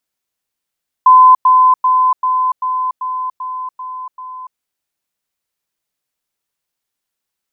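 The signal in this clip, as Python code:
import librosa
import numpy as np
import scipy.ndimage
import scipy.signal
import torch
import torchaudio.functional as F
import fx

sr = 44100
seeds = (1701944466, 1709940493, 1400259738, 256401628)

y = fx.level_ladder(sr, hz=1020.0, from_db=-2.5, step_db=-3.0, steps=9, dwell_s=0.29, gap_s=0.1)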